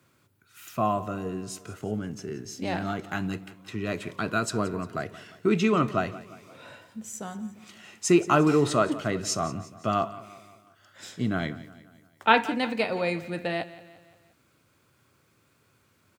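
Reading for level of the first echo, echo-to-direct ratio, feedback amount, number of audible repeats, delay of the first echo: -17.0 dB, -15.5 dB, 51%, 4, 0.175 s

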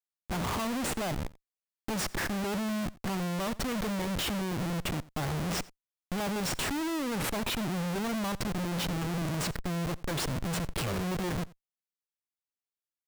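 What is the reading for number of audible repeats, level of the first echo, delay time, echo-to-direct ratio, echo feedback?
1, -22.0 dB, 88 ms, -22.0 dB, no steady repeat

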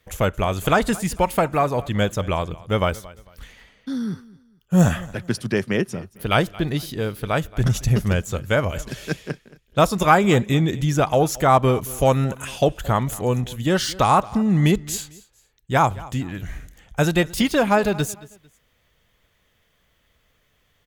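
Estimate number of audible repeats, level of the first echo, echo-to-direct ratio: 2, -20.5 dB, -20.0 dB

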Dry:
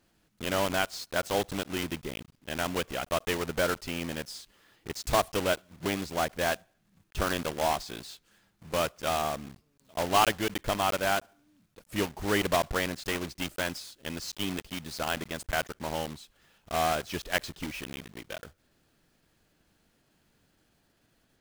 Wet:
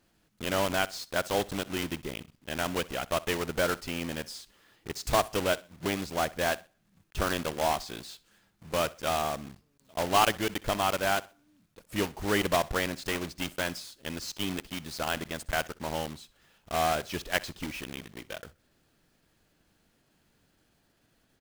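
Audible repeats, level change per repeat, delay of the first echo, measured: 2, -10.0 dB, 63 ms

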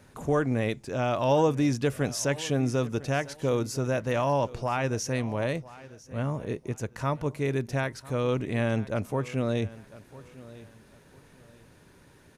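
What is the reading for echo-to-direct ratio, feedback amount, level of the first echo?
-18.5 dB, 29%, -19.0 dB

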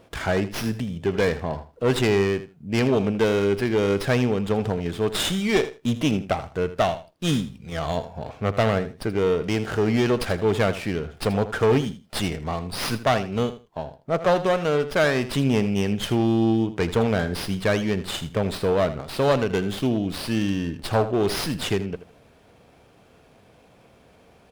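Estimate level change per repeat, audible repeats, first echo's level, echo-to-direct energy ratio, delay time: -15.0 dB, 2, -13.5 dB, -13.5 dB, 80 ms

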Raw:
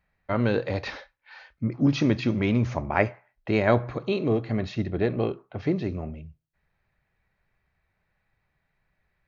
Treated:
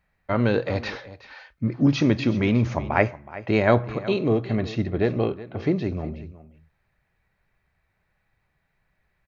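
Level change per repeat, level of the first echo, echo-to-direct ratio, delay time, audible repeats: no steady repeat, -16.5 dB, -16.5 dB, 0.37 s, 1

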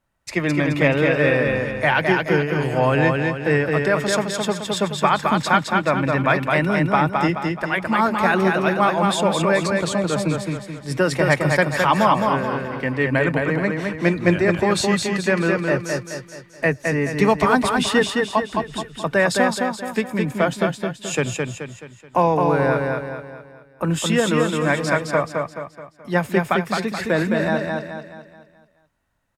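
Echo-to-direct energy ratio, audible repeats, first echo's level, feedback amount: -2.5 dB, 5, -3.5 dB, 44%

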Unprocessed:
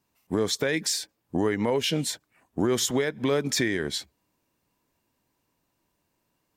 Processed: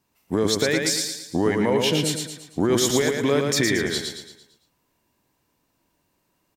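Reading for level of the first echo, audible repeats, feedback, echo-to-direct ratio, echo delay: -4.0 dB, 5, 44%, -3.0 dB, 0.113 s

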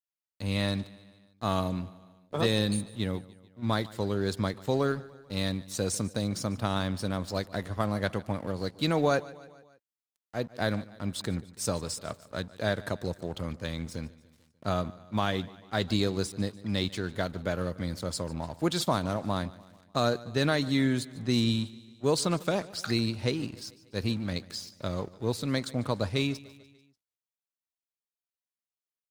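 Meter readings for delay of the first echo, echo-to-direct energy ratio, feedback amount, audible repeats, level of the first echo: 0.147 s, -18.5 dB, 56%, 3, -20.0 dB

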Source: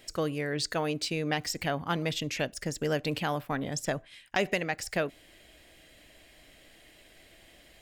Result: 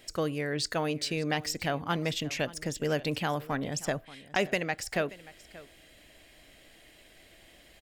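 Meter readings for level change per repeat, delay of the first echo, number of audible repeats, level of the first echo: no steady repeat, 0.581 s, 1, -19.0 dB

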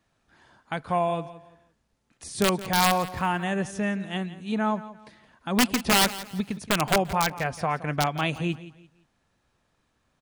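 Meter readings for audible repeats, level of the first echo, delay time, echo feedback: 2, -16.0 dB, 0.171 s, 30%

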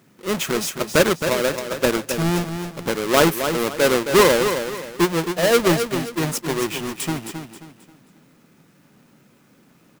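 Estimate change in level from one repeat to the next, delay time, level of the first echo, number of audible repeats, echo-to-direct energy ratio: -9.5 dB, 0.267 s, -8.0 dB, 3, -7.5 dB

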